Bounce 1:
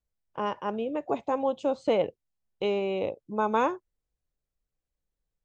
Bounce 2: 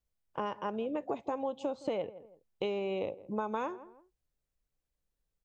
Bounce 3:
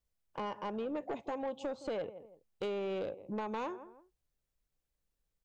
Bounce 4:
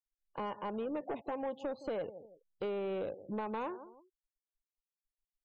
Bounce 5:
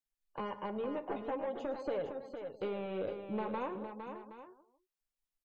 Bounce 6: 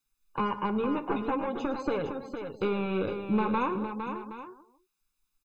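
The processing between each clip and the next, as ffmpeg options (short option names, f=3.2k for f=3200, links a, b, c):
-filter_complex "[0:a]asplit=2[a][b];[b]adelay=164,lowpass=f=1.1k:p=1,volume=-21.5dB,asplit=2[c][d];[d]adelay=164,lowpass=f=1.1k:p=1,volume=0.28[e];[a][c][e]amix=inputs=3:normalize=0,acompressor=threshold=-31dB:ratio=6"
-af "asoftclip=type=tanh:threshold=-31dB"
-filter_complex "[0:a]afftfilt=real='re*gte(hypot(re,im),0.00178)':imag='im*gte(hypot(re,im),0.00178)':win_size=1024:overlap=0.75,acrossover=split=2600[a][b];[b]acompressor=threshold=-59dB:ratio=4:attack=1:release=60[c];[a][c]amix=inputs=2:normalize=0"
-filter_complex "[0:a]flanger=delay=6.7:depth=5:regen=-42:speed=0.52:shape=triangular,asplit=2[a][b];[b]aecho=0:1:56|110|459|771:0.106|0.141|0.422|0.2[c];[a][c]amix=inputs=2:normalize=0,volume=3.5dB"
-af "aecho=1:1:0.8:0.68,volume=9dB"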